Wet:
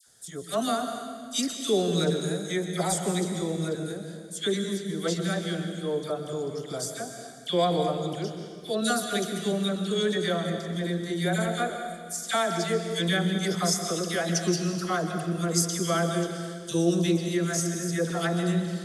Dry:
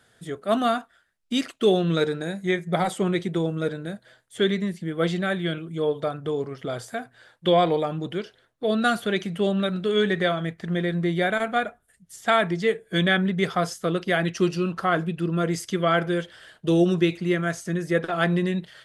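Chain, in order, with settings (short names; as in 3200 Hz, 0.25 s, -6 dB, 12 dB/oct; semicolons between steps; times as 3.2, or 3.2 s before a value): resonant high shelf 3900 Hz +13 dB, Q 1.5; dispersion lows, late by 69 ms, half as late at 1500 Hz; on a send: reverb RT60 2.0 s, pre-delay 0.119 s, DRR 6 dB; on the sum: gain -5 dB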